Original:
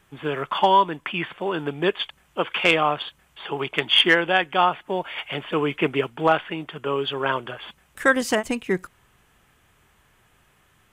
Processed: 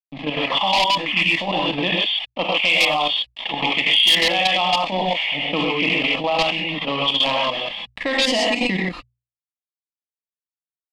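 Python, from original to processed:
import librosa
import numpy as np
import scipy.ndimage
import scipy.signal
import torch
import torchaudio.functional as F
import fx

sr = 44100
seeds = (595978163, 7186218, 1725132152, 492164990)

y = np.sign(x) * np.maximum(np.abs(x) - 10.0 ** (-44.5 / 20.0), 0.0)
y = fx.rev_gated(y, sr, seeds[0], gate_ms=160, shape='rising', drr_db=-5.0)
y = fx.level_steps(y, sr, step_db=12)
y = fx.high_shelf(y, sr, hz=12000.0, db=-7.0)
y = fx.hum_notches(y, sr, base_hz=60, count=2)
y = np.clip(10.0 ** (18.0 / 20.0) * y, -1.0, 1.0) / 10.0 ** (18.0 / 20.0)
y = fx.band_shelf(y, sr, hz=3000.0, db=10.0, octaves=1.7)
y = fx.fixed_phaser(y, sr, hz=400.0, stages=6)
y = fx.env_lowpass(y, sr, base_hz=1900.0, full_db=-16.5)
y = fx.env_flatten(y, sr, amount_pct=50)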